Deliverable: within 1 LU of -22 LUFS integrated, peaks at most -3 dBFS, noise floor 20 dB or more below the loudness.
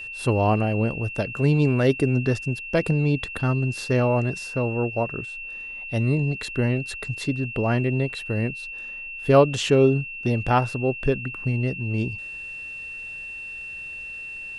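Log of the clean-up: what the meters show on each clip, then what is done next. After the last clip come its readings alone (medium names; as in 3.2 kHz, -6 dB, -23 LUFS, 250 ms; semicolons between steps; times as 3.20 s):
steady tone 2.7 kHz; tone level -33 dBFS; loudness -24.0 LUFS; peak level -4.0 dBFS; loudness target -22.0 LUFS
-> band-stop 2.7 kHz, Q 30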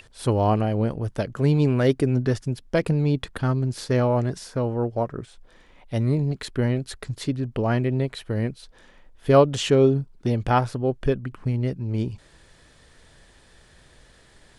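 steady tone not found; loudness -24.0 LUFS; peak level -4.0 dBFS; loudness target -22.0 LUFS
-> trim +2 dB; peak limiter -3 dBFS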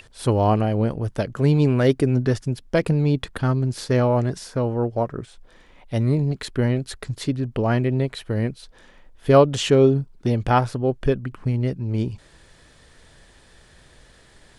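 loudness -22.0 LUFS; peak level -3.0 dBFS; noise floor -52 dBFS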